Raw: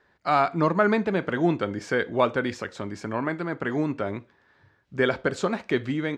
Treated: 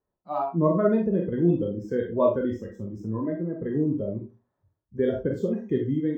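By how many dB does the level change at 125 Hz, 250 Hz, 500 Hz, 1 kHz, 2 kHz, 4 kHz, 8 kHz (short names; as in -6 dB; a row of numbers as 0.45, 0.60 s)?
+2.5 dB, +2.0 dB, +0.5 dB, -7.5 dB, -16.5 dB, under -15 dB, under -15 dB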